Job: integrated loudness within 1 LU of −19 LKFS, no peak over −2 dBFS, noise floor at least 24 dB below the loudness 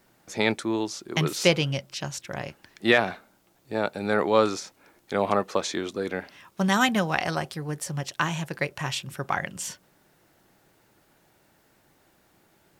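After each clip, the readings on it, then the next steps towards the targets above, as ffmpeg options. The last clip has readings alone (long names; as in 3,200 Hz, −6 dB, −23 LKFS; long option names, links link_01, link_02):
integrated loudness −27.0 LKFS; sample peak −5.5 dBFS; target loudness −19.0 LKFS
→ -af "volume=8dB,alimiter=limit=-2dB:level=0:latency=1"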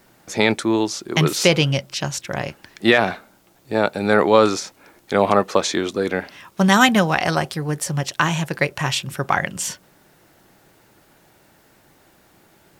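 integrated loudness −19.5 LKFS; sample peak −2.0 dBFS; background noise floor −56 dBFS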